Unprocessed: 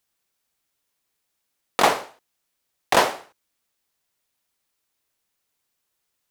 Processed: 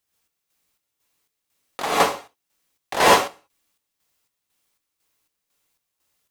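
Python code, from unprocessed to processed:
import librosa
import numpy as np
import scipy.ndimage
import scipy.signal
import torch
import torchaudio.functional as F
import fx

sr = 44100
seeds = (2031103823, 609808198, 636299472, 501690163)

y = fx.peak_eq(x, sr, hz=74.0, db=7.0, octaves=0.23)
y = fx.rev_gated(y, sr, seeds[0], gate_ms=170, shape='rising', drr_db=-7.0)
y = fx.chopper(y, sr, hz=2.0, depth_pct=60, duty_pct=55)
y = y * 10.0 ** (-3.0 / 20.0)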